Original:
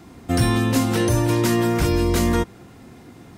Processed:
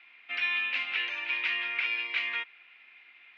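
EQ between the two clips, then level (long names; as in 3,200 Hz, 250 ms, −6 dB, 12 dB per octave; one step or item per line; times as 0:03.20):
high-pass with resonance 2,400 Hz, resonance Q 5
low-pass filter 3,100 Hz 24 dB per octave
high-frequency loss of the air 100 metres
−3.0 dB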